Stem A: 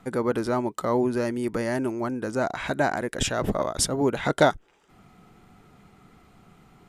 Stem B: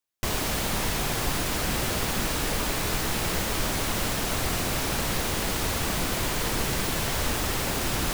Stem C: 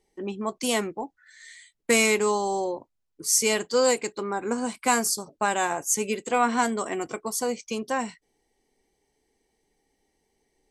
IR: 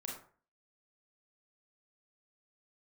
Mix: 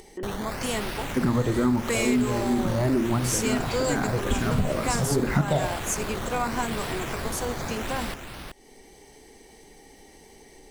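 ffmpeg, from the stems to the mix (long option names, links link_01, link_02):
-filter_complex "[0:a]bass=frequency=250:gain=14,treble=frequency=4000:gain=-2,asplit=2[link_01][link_02];[link_02]afreqshift=-2.2[link_03];[link_01][link_03]amix=inputs=2:normalize=1,adelay=1100,volume=2dB,asplit=2[link_04][link_05];[link_05]volume=-6dB[link_06];[1:a]acrusher=samples=12:mix=1:aa=0.000001:lfo=1:lforange=12:lforate=0.84,volume=-6dB,asplit=2[link_07][link_08];[link_08]volume=-6.5dB[link_09];[2:a]acompressor=mode=upward:threshold=-23dB:ratio=2.5,volume=-5dB,asplit=2[link_10][link_11];[link_11]apad=whole_len=351945[link_12];[link_04][link_12]sidechaincompress=threshold=-37dB:ratio=8:attack=16:release=185[link_13];[3:a]atrim=start_sample=2205[link_14];[link_06][link_14]afir=irnorm=-1:irlink=0[link_15];[link_09]aecho=0:1:378:1[link_16];[link_13][link_07][link_10][link_15][link_16]amix=inputs=5:normalize=0,acompressor=threshold=-20dB:ratio=3"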